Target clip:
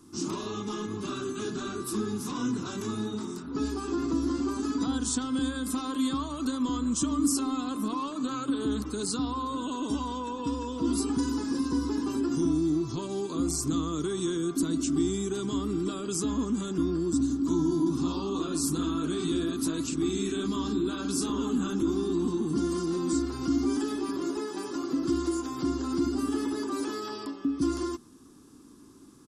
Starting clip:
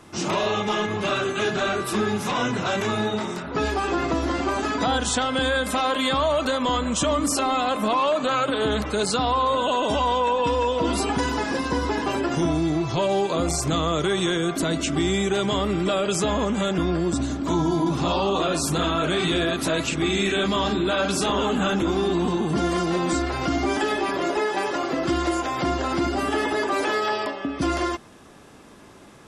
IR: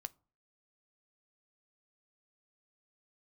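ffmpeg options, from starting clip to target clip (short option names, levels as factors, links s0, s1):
-af "firequalizer=gain_entry='entry(190,0);entry(270,10);entry(600,-17);entry(1100,-2);entry(2000,-14);entry(4700,2);entry(9800,6)':delay=0.05:min_phase=1,volume=0.398"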